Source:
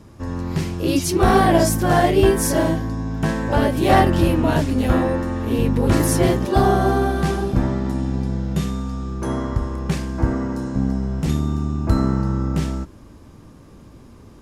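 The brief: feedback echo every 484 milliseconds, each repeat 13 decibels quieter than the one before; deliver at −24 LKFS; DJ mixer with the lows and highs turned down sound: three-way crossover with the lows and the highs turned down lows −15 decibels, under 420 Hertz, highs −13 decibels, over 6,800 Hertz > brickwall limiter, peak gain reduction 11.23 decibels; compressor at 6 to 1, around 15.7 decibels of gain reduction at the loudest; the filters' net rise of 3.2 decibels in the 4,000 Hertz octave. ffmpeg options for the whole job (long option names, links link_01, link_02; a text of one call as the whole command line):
ffmpeg -i in.wav -filter_complex "[0:a]equalizer=frequency=4000:width_type=o:gain=5,acompressor=threshold=-28dB:ratio=6,acrossover=split=420 6800:gain=0.178 1 0.224[link_01][link_02][link_03];[link_01][link_02][link_03]amix=inputs=3:normalize=0,aecho=1:1:484|968|1452:0.224|0.0493|0.0108,volume=16.5dB,alimiter=limit=-14.5dB:level=0:latency=1" out.wav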